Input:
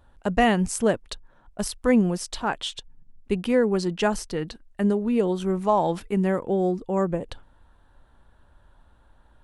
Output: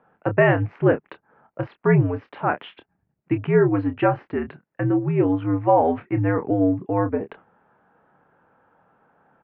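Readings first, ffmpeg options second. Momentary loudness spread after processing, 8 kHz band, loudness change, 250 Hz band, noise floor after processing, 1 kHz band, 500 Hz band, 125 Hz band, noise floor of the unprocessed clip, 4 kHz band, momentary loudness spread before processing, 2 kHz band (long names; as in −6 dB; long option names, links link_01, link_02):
11 LU, below −40 dB, +3.0 dB, +1.5 dB, −75 dBFS, +2.5 dB, +2.5 dB, +7.5 dB, −58 dBFS, below −10 dB, 11 LU, +3.5 dB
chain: -filter_complex "[0:a]asplit=2[link_01][link_02];[link_02]adelay=27,volume=-9.5dB[link_03];[link_01][link_03]amix=inputs=2:normalize=0,highpass=frequency=220:width_type=q:width=0.5412,highpass=frequency=220:width_type=q:width=1.307,lowpass=frequency=2400:width_type=q:width=0.5176,lowpass=frequency=2400:width_type=q:width=0.7071,lowpass=frequency=2400:width_type=q:width=1.932,afreqshift=-79,volume=4dB"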